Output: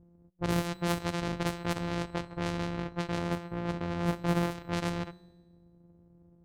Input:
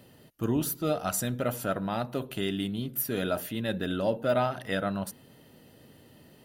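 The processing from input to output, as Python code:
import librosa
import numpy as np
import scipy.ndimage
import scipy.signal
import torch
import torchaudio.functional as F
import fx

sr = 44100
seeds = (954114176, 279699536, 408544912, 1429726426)

y = np.r_[np.sort(x[:len(x) // 256 * 256].reshape(-1, 256), axis=1).ravel(), x[len(x) // 256 * 256:]]
y = fx.env_lowpass(y, sr, base_hz=310.0, full_db=-23.5)
y = fx.high_shelf(y, sr, hz=2800.0, db=-9.5, at=(3.18, 4.51))
y = fx.comb_fb(y, sr, f0_hz=180.0, decay_s=1.3, harmonics='all', damping=0.0, mix_pct=60)
y = F.gain(torch.from_numpy(y), 5.5).numpy()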